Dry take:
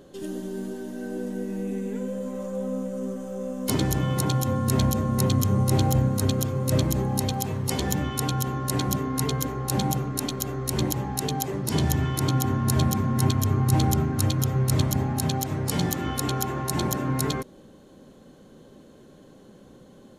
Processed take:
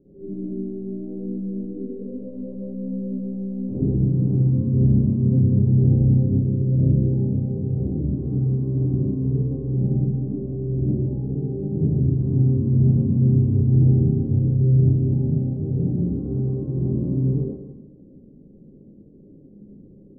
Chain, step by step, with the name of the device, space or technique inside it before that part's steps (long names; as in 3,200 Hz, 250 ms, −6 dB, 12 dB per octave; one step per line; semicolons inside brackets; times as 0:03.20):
next room (low-pass filter 390 Hz 24 dB per octave; convolution reverb RT60 1.1 s, pre-delay 48 ms, DRR −9.5 dB)
level −6 dB